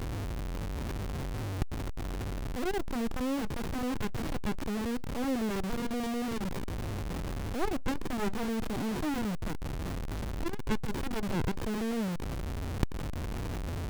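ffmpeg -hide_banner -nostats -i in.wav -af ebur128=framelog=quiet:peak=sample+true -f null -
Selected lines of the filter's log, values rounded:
Integrated loudness:
  I:         -35.1 LUFS
  Threshold: -45.1 LUFS
Loudness range:
  LRA:         1.4 LU
  Threshold: -54.8 LUFS
  LRA low:   -35.4 LUFS
  LRA high:  -34.0 LUFS
Sample peak:
  Peak:      -11.2 dBFS
True peak:
  Peak:      -10.5 dBFS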